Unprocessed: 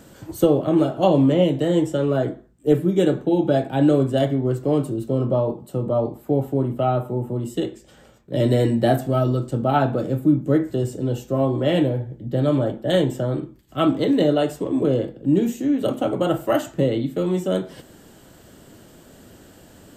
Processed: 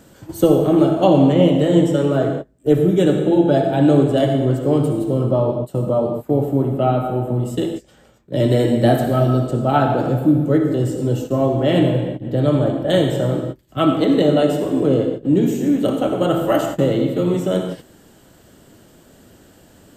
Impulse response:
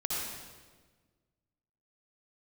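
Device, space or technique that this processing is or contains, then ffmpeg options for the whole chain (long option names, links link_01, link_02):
keyed gated reverb: -filter_complex "[0:a]asplit=3[link_01][link_02][link_03];[1:a]atrim=start_sample=2205[link_04];[link_02][link_04]afir=irnorm=-1:irlink=0[link_05];[link_03]apad=whole_len=880553[link_06];[link_05][link_06]sidechaingate=range=-37dB:threshold=-35dB:ratio=16:detection=peak,volume=-5.5dB[link_07];[link_01][link_07]amix=inputs=2:normalize=0,volume=-1dB"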